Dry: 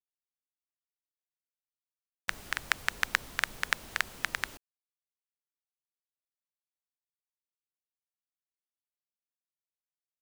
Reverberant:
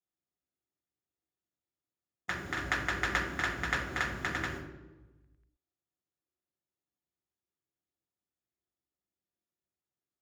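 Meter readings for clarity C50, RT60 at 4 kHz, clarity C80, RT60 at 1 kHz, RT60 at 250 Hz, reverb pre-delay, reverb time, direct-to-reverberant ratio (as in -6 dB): 3.0 dB, 0.70 s, 6.0 dB, 1.0 s, 1.4 s, 3 ms, 1.2 s, -8.0 dB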